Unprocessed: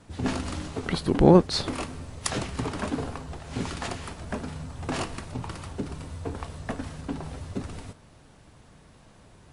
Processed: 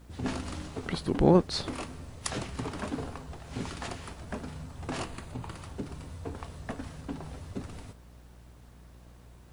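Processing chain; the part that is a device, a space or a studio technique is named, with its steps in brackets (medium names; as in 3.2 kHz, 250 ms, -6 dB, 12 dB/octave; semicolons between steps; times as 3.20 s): 5.06–5.57 s: band-stop 5.5 kHz, Q 6; video cassette with head-switching buzz (mains buzz 60 Hz, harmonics 32, -48 dBFS -8 dB/octave; white noise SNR 39 dB); trim -5 dB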